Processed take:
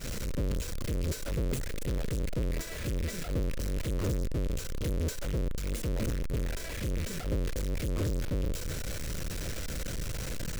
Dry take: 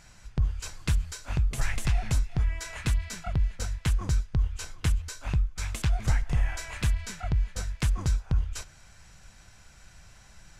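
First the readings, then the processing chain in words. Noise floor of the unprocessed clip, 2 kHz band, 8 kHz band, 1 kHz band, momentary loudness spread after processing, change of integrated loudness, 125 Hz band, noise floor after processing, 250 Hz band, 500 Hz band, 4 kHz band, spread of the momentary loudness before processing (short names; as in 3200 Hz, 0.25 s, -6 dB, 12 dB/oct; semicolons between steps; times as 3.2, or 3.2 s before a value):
-54 dBFS, -4.0 dB, -1.5 dB, -5.5 dB, 5 LU, -4.0 dB, -4.0 dB, -37 dBFS, +3.5 dB, +9.0 dB, -1.5 dB, 5 LU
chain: infinite clipping; resonant low shelf 640 Hz +6.5 dB, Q 3; expander -12 dBFS; gain +6.5 dB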